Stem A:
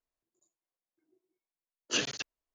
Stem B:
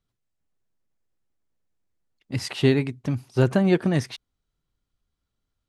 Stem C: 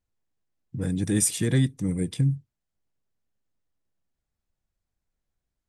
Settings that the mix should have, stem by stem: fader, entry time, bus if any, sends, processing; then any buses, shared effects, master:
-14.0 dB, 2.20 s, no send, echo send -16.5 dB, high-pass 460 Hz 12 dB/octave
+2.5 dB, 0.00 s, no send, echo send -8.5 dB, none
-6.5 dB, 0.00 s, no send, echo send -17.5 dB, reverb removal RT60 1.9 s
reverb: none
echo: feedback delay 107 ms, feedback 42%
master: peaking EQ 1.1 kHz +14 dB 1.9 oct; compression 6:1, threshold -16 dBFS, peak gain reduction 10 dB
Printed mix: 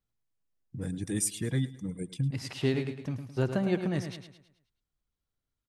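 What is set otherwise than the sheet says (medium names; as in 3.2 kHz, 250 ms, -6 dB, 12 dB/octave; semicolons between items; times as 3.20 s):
stem A: muted; stem B +2.5 dB -> -9.0 dB; master: missing peaking EQ 1.1 kHz +14 dB 1.9 oct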